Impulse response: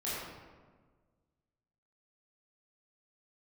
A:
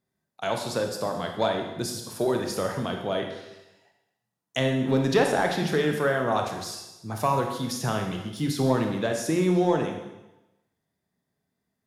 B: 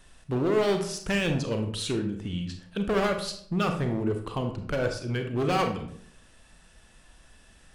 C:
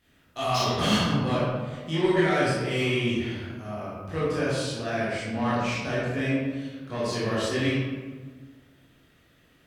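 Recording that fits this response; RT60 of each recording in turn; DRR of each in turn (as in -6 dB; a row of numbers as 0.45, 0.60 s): C; 1.0, 0.65, 1.5 s; 3.0, 4.5, -10.5 dB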